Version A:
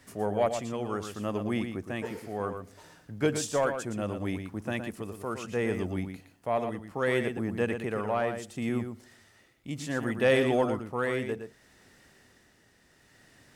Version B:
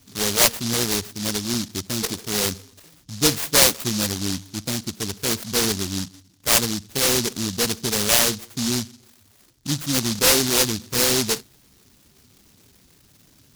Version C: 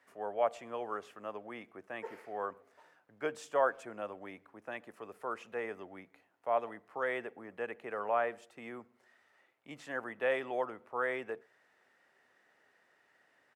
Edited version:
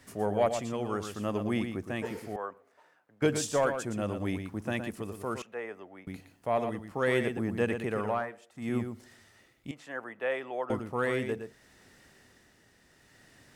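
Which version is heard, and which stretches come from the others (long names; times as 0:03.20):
A
0:02.36–0:03.22: punch in from C
0:05.42–0:06.07: punch in from C
0:08.21–0:08.63: punch in from C, crossfade 0.24 s
0:09.71–0:10.70: punch in from C
not used: B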